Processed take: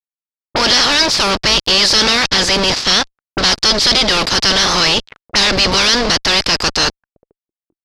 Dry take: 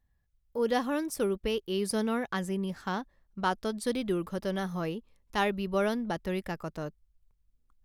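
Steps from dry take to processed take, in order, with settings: spectral peaks clipped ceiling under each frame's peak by 30 dB; fuzz box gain 48 dB, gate -51 dBFS; touch-sensitive low-pass 320–4900 Hz up, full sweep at -17.5 dBFS; trim -1 dB

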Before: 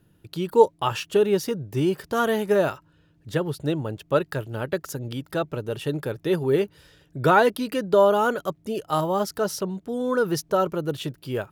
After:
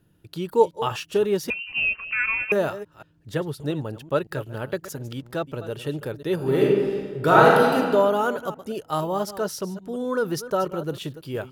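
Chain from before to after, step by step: chunks repeated in reverse 178 ms, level -13.5 dB; 1.50–2.52 s: frequency inversion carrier 2.9 kHz; 4.98–5.44 s: hysteresis with a dead band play -48.5 dBFS; 6.35–7.75 s: reverb throw, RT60 1.6 s, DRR -4.5 dB; trim -2 dB

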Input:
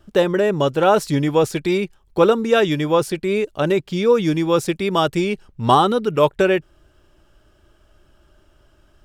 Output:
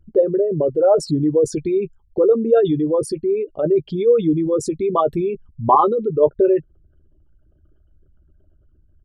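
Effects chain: resonances exaggerated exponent 3; doubling 13 ms -9.5 dB

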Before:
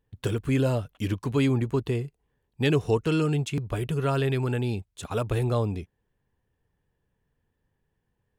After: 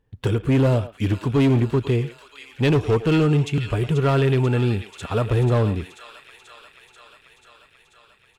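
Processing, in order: on a send: feedback echo behind a high-pass 487 ms, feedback 73%, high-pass 1.8 kHz, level -8.5 dB; on the sum: harmonic-percussive split percussive -3 dB; treble shelf 6.5 kHz -10.5 dB; speakerphone echo 110 ms, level -14 dB; overload inside the chain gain 21 dB; trim +7.5 dB

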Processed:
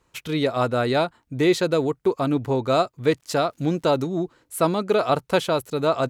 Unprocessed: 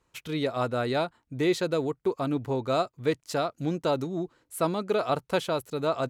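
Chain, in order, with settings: 3.16–3.96 s: crackle 290 per s -58 dBFS; trim +6 dB

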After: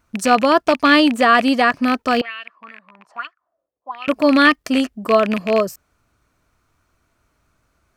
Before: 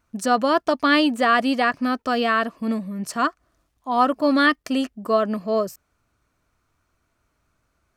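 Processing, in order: rattle on loud lows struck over -32 dBFS, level -17 dBFS; 2.21–4.08 s: auto-wah 460–2700 Hz, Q 6.7, up, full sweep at -17 dBFS; trim +5 dB

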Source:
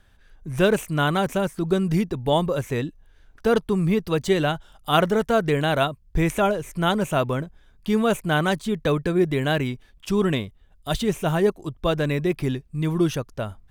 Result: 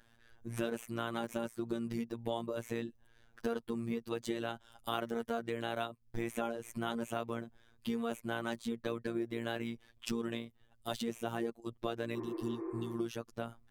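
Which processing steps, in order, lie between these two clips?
ring modulator 28 Hz; resonant low shelf 160 Hz -7 dB, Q 1.5; compression 4:1, threshold -33 dBFS, peak gain reduction 15 dB; robot voice 116 Hz; spectral replace 12.17–12.90 s, 300–2600 Hz after

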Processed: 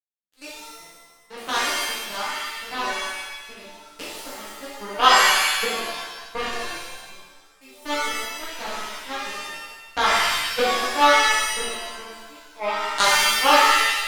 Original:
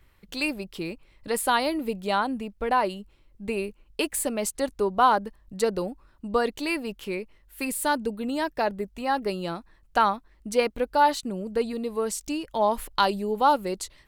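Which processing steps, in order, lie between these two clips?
power-law waveshaper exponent 3; pitch-shifted reverb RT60 1.1 s, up +7 st, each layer -2 dB, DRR -9 dB; trim +5.5 dB

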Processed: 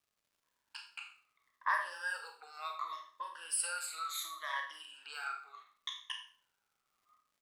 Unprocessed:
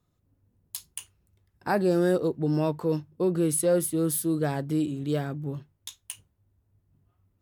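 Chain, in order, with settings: drifting ripple filter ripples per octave 1.2, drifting -0.7 Hz, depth 20 dB; gate with hold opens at -57 dBFS; level-controlled noise filter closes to 1.5 kHz, open at -16.5 dBFS; tilt EQ -2 dB/octave; compression, threshold -26 dBFS, peak gain reduction 14 dB; Chebyshev high-pass 1.1 kHz, order 4; crackle 220 per s -73 dBFS; speakerphone echo 80 ms, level -27 dB; Schroeder reverb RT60 0.44 s, combs from 28 ms, DRR 3.5 dB; trim +7 dB

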